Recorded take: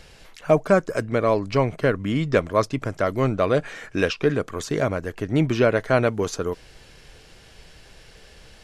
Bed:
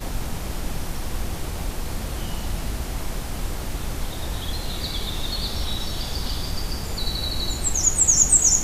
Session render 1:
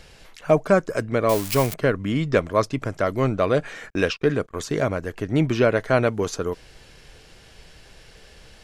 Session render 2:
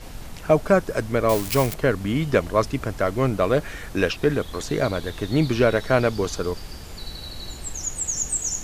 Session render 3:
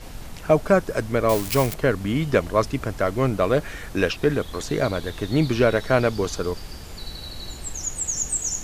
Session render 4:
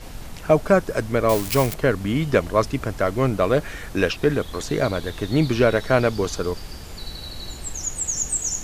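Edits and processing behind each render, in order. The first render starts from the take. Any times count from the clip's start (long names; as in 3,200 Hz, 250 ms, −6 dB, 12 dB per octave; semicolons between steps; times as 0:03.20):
0:01.29–0:01.74: spike at every zero crossing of −16 dBFS; 0:03.90–0:04.69: noise gate −36 dBFS, range −37 dB
mix in bed −9.5 dB
no processing that can be heard
level +1 dB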